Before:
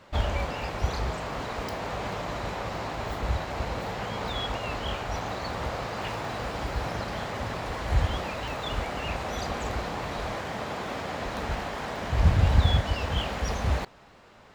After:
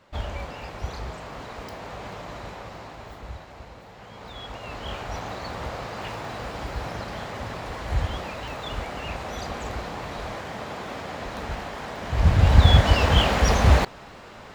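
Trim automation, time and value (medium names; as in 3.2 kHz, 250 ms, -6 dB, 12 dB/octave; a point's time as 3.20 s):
2.40 s -4.5 dB
3.88 s -13.5 dB
4.99 s -1 dB
12.00 s -1 dB
12.90 s +10 dB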